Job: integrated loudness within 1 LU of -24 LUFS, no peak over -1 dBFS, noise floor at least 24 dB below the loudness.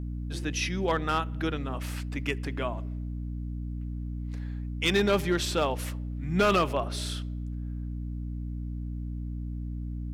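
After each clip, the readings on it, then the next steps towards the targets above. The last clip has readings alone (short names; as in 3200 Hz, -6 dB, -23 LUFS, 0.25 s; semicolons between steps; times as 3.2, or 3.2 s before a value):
clipped 0.4%; flat tops at -17.5 dBFS; hum 60 Hz; harmonics up to 300 Hz; hum level -32 dBFS; loudness -31.0 LUFS; peak -17.5 dBFS; loudness target -24.0 LUFS
-> clip repair -17.5 dBFS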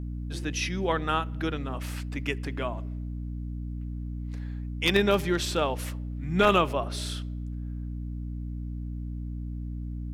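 clipped 0.0%; hum 60 Hz; harmonics up to 300 Hz; hum level -32 dBFS
-> notches 60/120/180/240/300 Hz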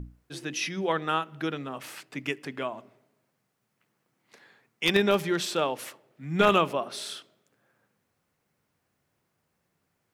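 hum none; loudness -28.0 LUFS; peak -8.0 dBFS; loudness target -24.0 LUFS
-> gain +4 dB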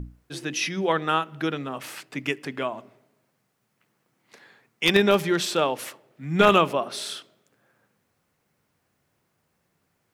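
loudness -24.0 LUFS; peak -4.0 dBFS; noise floor -73 dBFS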